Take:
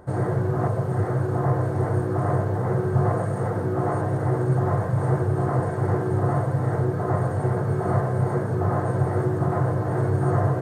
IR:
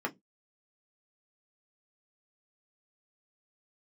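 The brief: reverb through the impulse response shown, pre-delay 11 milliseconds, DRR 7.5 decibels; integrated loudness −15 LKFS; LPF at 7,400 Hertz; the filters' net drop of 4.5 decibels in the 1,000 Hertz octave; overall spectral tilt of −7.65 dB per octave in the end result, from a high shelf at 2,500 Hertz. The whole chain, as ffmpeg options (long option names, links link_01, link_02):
-filter_complex "[0:a]lowpass=7400,equalizer=frequency=1000:width_type=o:gain=-7.5,highshelf=frequency=2500:gain=5,asplit=2[link_01][link_02];[1:a]atrim=start_sample=2205,adelay=11[link_03];[link_02][link_03]afir=irnorm=-1:irlink=0,volume=-13dB[link_04];[link_01][link_04]amix=inputs=2:normalize=0,volume=9dB"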